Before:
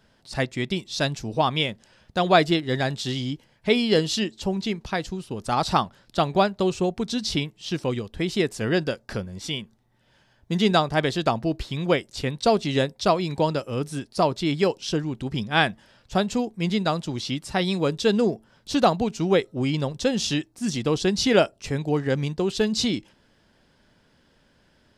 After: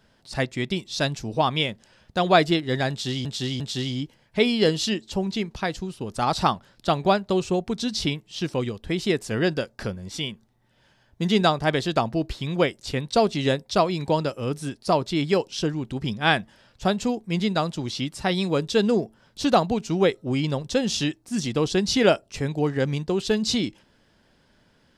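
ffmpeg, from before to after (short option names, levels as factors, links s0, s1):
-filter_complex "[0:a]asplit=3[s0][s1][s2];[s0]atrim=end=3.252[s3];[s1]atrim=start=2.898:end=3.252[s4];[s2]atrim=start=2.898[s5];[s3][s4]acrossfade=d=0.004:c1=hsin:c2=hsin[s6];[s6][s5]acrossfade=d=0.004:c1=hsin:c2=hsin"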